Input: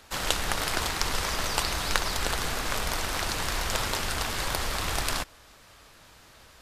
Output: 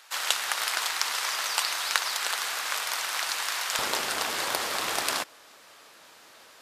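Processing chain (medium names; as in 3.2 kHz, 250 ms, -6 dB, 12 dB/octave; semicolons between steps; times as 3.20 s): high-pass 980 Hz 12 dB/octave, from 3.79 s 320 Hz; trim +2 dB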